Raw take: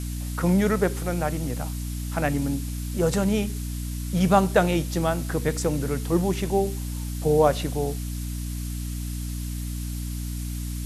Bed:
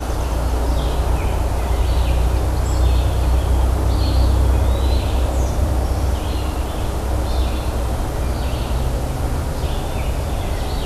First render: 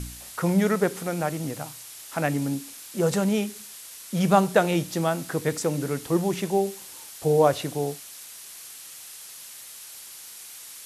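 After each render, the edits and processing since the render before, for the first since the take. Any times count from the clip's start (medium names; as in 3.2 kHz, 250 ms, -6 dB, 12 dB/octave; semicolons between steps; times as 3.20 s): de-hum 60 Hz, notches 5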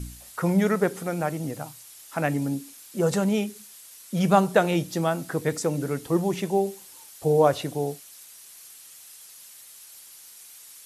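noise reduction 7 dB, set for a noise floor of -43 dBFS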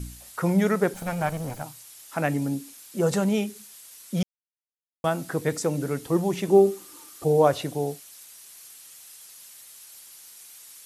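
0.94–1.63 s: comb filter that takes the minimum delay 1.3 ms; 4.23–5.04 s: mute; 6.48–7.24 s: small resonant body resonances 310/1200 Hz, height 17 dB, ringing for 40 ms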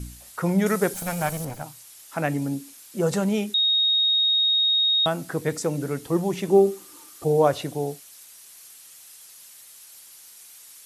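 0.66–1.45 s: treble shelf 4.3 kHz +11.5 dB; 3.54–5.06 s: bleep 3.74 kHz -17.5 dBFS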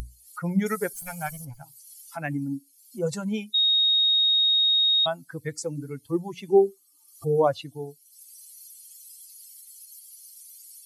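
expander on every frequency bin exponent 2; upward compressor, threshold -33 dBFS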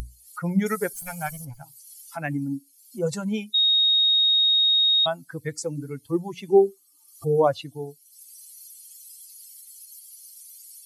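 trim +1.5 dB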